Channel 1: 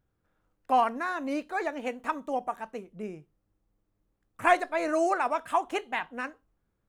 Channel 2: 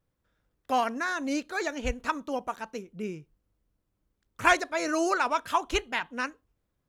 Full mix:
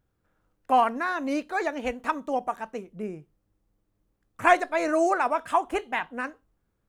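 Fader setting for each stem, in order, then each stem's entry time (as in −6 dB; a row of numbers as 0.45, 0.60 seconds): +2.0, −13.5 decibels; 0.00, 0.00 seconds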